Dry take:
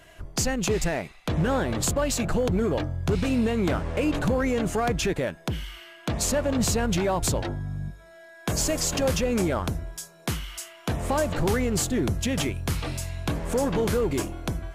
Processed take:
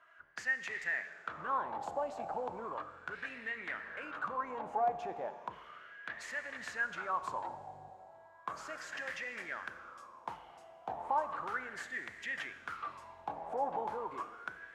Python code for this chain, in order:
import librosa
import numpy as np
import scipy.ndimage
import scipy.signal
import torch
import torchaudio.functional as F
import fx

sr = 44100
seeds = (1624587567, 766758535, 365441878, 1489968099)

y = fx.rev_schroeder(x, sr, rt60_s=2.9, comb_ms=28, drr_db=9.5)
y = fx.wah_lfo(y, sr, hz=0.35, low_hz=770.0, high_hz=1900.0, q=8.5)
y = y * librosa.db_to_amplitude(4.0)